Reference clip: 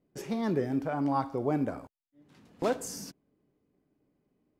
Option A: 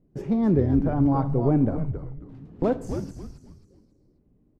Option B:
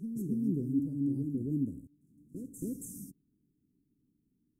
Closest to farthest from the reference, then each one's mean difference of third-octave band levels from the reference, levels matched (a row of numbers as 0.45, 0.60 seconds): A, B; 8.0, 13.0 decibels